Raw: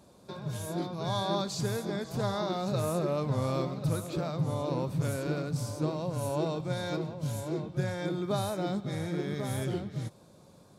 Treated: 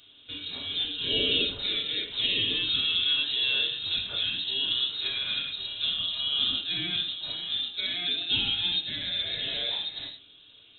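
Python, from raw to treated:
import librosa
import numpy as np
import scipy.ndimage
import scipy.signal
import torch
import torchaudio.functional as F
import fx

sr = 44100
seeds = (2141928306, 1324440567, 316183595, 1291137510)

y = fx.highpass(x, sr, hz=460.0, slope=6)
y = fx.rev_gated(y, sr, seeds[0], gate_ms=150, shape='falling', drr_db=1.0)
y = fx.freq_invert(y, sr, carrier_hz=3900)
y = F.gain(torch.from_numpy(y), 4.5).numpy()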